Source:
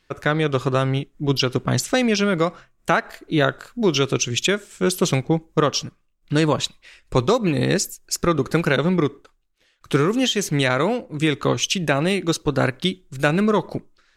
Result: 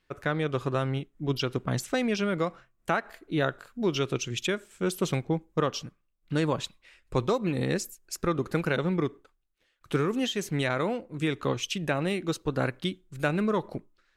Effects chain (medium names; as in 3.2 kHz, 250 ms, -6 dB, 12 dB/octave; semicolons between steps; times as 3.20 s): peaking EQ 5.7 kHz -5 dB 1.4 oct; trim -8 dB